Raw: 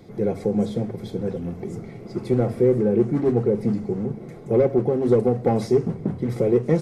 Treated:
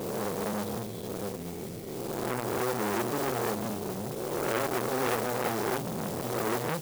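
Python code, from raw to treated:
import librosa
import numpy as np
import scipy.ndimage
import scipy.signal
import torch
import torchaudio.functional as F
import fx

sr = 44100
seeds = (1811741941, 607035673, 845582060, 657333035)

y = fx.spec_swells(x, sr, rise_s=1.94)
y = fx.mod_noise(y, sr, seeds[0], snr_db=10)
y = fx.transformer_sat(y, sr, knee_hz=2300.0)
y = y * 10.0 ** (-9.0 / 20.0)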